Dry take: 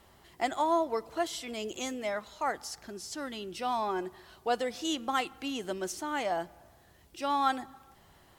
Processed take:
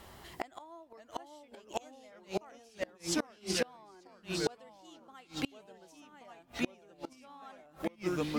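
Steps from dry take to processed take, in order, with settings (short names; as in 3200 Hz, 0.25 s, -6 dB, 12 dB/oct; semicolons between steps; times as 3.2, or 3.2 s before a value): echoes that change speed 0.508 s, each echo -2 st, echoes 3; flipped gate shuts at -26 dBFS, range -31 dB; gain +6.5 dB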